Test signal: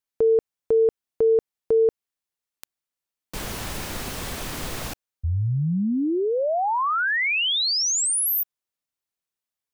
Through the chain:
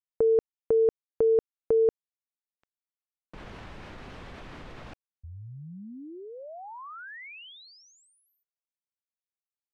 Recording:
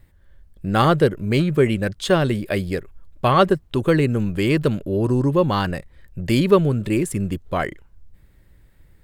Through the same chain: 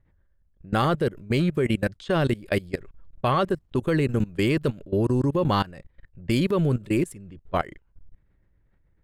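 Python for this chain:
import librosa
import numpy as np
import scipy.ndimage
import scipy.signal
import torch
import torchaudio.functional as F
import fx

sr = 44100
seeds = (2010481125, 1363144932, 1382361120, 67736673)

y = fx.level_steps(x, sr, step_db=21)
y = fx.env_lowpass(y, sr, base_hz=1900.0, full_db=-22.0)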